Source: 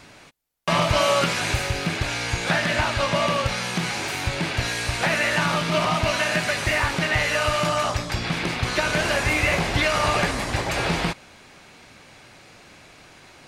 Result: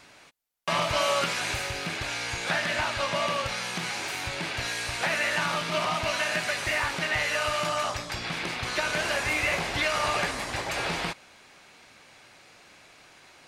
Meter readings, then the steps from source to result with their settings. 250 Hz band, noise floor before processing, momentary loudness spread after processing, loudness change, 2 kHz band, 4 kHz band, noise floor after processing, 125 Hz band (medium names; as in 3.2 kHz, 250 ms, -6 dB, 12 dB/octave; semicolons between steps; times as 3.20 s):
-10.0 dB, -49 dBFS, 6 LU, -5.0 dB, -4.5 dB, -4.0 dB, -54 dBFS, -11.5 dB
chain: bass shelf 330 Hz -9 dB; trim -4 dB